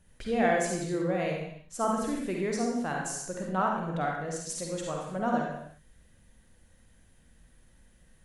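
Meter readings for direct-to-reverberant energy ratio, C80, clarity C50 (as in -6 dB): -1.0 dB, 3.5 dB, 0.5 dB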